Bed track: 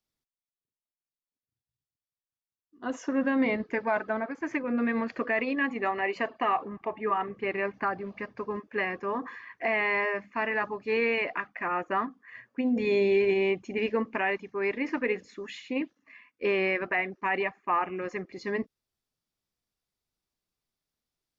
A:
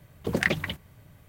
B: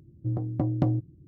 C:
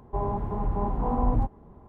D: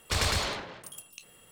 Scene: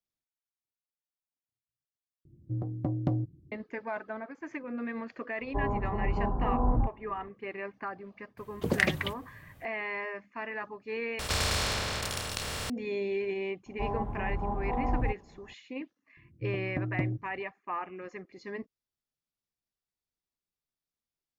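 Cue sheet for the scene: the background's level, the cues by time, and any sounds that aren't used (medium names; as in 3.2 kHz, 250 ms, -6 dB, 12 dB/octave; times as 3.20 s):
bed track -8.5 dB
2.25 s: replace with B -4.5 dB
5.41 s: add C -2.5 dB + steep low-pass 1.7 kHz 72 dB/octave
8.37 s: add A -1.5 dB
11.19 s: replace with D -5.5 dB + spectral levelling over time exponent 0.2
13.66 s: add C -6 dB + peaking EQ 770 Hz +5 dB 0.27 oct
16.17 s: add B -6.5 dB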